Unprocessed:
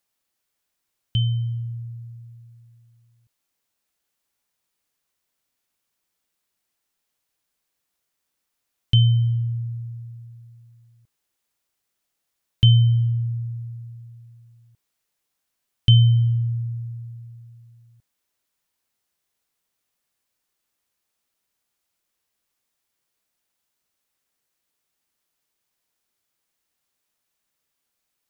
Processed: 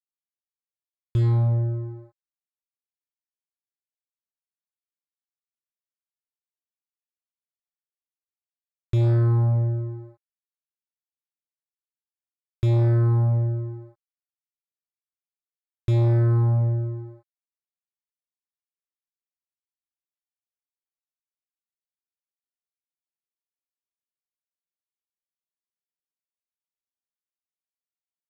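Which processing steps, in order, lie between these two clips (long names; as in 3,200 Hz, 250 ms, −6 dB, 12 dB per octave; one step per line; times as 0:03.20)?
fuzz pedal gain 26 dB, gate −36 dBFS
moving average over 15 samples
level −4 dB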